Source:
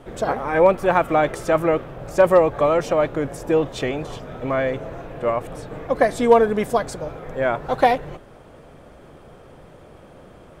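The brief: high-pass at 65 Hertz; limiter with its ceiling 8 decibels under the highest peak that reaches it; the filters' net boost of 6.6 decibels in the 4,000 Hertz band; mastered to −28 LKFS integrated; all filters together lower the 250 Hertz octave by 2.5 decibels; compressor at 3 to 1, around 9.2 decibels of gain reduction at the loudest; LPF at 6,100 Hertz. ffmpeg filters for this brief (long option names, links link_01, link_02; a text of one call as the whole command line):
ffmpeg -i in.wav -af "highpass=65,lowpass=6100,equalizer=frequency=250:width_type=o:gain=-3.5,equalizer=frequency=4000:width_type=o:gain=9,acompressor=threshold=-22dB:ratio=3,volume=1dB,alimiter=limit=-16.5dB:level=0:latency=1" out.wav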